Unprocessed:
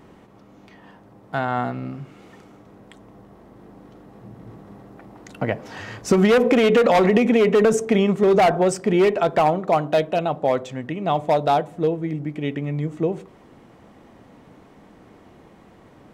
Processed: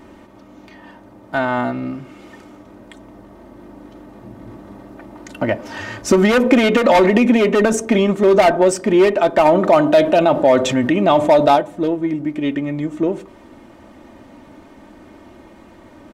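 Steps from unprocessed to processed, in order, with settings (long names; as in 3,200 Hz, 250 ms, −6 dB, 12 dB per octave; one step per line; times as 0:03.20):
comb filter 3.3 ms, depth 60%
in parallel at −10 dB: soft clipping −22 dBFS, distortion −6 dB
0:09.45–0:11.56: on the sum: envelope flattener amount 50%
level +2.5 dB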